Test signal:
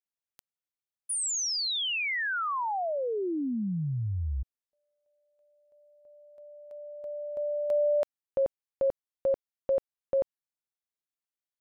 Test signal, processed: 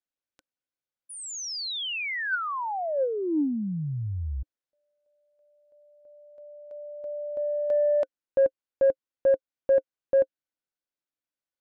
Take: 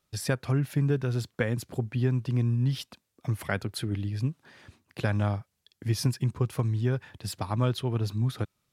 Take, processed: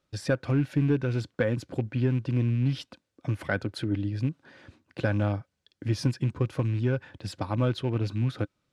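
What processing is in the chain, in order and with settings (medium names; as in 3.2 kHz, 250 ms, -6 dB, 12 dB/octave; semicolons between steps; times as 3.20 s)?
rattle on loud lows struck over -27 dBFS, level -36 dBFS; small resonant body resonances 300/530/1500 Hz, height 8 dB, ringing for 45 ms; saturation -12 dBFS; distance through air 71 m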